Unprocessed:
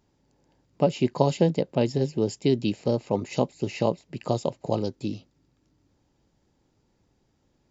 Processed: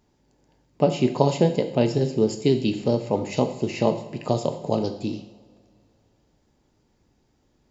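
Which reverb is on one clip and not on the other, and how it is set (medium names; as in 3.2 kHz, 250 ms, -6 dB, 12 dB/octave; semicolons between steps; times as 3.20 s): two-slope reverb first 0.72 s, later 2.8 s, from -20 dB, DRR 6 dB; trim +2 dB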